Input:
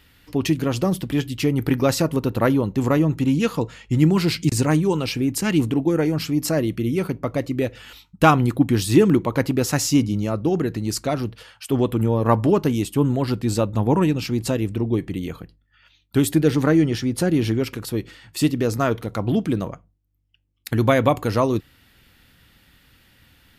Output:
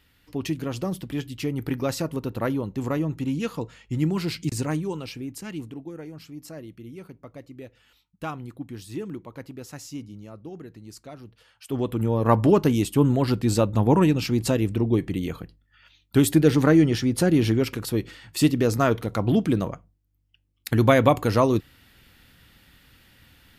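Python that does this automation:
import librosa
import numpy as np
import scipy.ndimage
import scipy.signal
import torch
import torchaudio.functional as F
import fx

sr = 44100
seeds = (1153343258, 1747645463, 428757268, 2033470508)

y = fx.gain(x, sr, db=fx.line((4.64, -7.5), (5.96, -18.5), (11.23, -18.5), (11.75, -7.0), (12.44, 0.0)))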